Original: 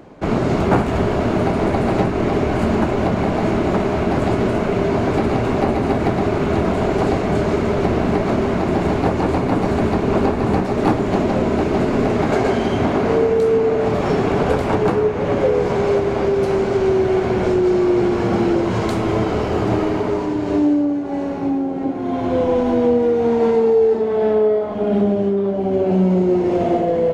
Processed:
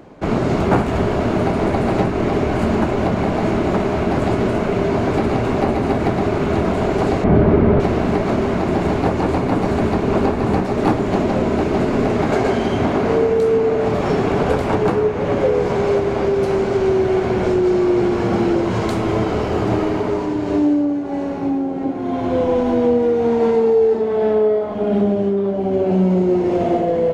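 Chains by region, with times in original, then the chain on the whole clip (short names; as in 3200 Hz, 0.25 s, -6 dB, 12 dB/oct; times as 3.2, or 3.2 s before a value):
7.24–7.8 LPF 2300 Hz + low shelf 450 Hz +8 dB
whole clip: dry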